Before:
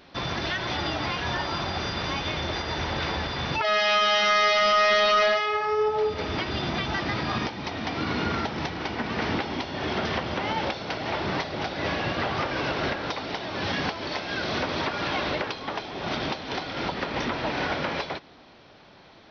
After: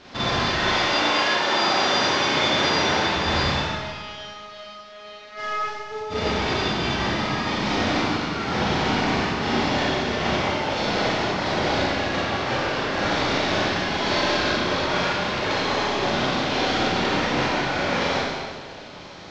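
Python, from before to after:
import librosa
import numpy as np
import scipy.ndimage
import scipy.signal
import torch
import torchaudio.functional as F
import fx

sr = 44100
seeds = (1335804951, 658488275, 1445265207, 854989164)

y = fx.cvsd(x, sr, bps=32000)
y = fx.highpass(y, sr, hz=fx.line((0.66, 430.0), (3.09, 140.0)), slope=12, at=(0.66, 3.09), fade=0.02)
y = fx.over_compress(y, sr, threshold_db=-31.0, ratio=-0.5)
y = fx.rev_schroeder(y, sr, rt60_s=1.6, comb_ms=30, drr_db=-7.0)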